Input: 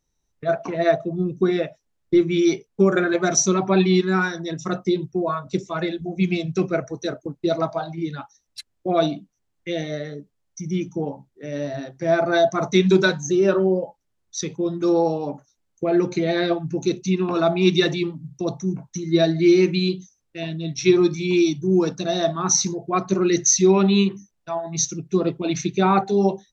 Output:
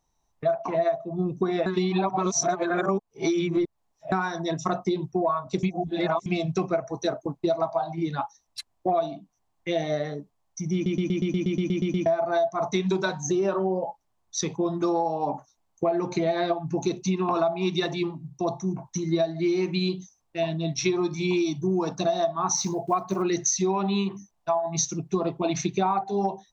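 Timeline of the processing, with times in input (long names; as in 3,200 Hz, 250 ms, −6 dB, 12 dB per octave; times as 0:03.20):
0:01.66–0:04.12: reverse
0:05.63–0:06.26: reverse
0:10.74: stutter in place 0.12 s, 11 plays
0:17.86–0:18.85: tuned comb filter 350 Hz, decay 0.35 s, mix 30%
0:22.55–0:23.24: one scale factor per block 7 bits
whole clip: flat-topped bell 860 Hz +11 dB 1 octave; downward compressor 12 to 1, threshold −21 dBFS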